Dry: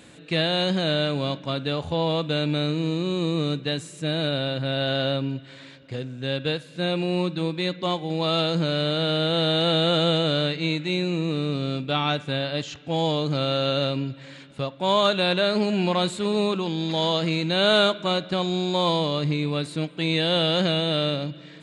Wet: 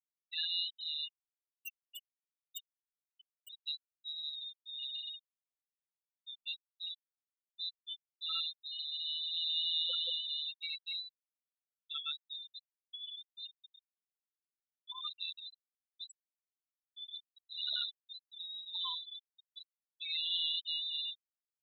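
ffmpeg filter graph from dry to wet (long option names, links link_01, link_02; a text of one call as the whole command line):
ffmpeg -i in.wav -filter_complex "[0:a]asettb=1/sr,asplit=3[link_01][link_02][link_03];[link_01]atrim=end=1.134[link_04];[link_02]atrim=start=1.13:end=3.49,asetpts=PTS-STARTPTS,afade=type=in:duration=0.004:curve=qsin,afade=type=out:start_time=2.356:duration=0.004:curve=qsin,lowpass=frequency=3000:width_type=q:width=6.7,acompressor=threshold=-28dB:ratio=2:attack=3.2:release=140:knee=1:detection=peak,acrusher=samples=21:mix=1:aa=0.000001:lfo=1:lforange=33.6:lforate=3.3[link_05];[link_03]atrim=start=3.486[link_06];[link_04][link_05]acrossfade=duration=0.004:curve1=hsin:curve2=qsin[link_07];[link_07][link_06]acrossfade=duration=0.004:curve1=qsin:curve2=hsin,asettb=1/sr,asplit=3[link_08][link_09][link_10];[link_08]atrim=end=13.474[link_11];[link_09]atrim=start=13.47:end=18.21,asetpts=PTS-STARTPTS,afade=type=in:duration=0.004:curve=qsin,afade=type=out:start_time=4.736:duration=0.004:curve=qsin,tremolo=f=74:d=0.974,aecho=1:1:79|158|237:0.224|0.0649|0.0188,atrim=end_sample=209034[link_12];[link_10]atrim=start=18.206[link_13];[link_11][link_12]acrossfade=duration=0.004:curve1=hsin:curve2=qsin[link_14];[link_14][link_13]acrossfade=duration=0.004:curve1=qsin:curve2=hsin,aderivative,afftfilt=real='re*gte(hypot(re,im),0.0631)':imag='im*gte(hypot(re,im),0.0631)':win_size=1024:overlap=0.75" out.wav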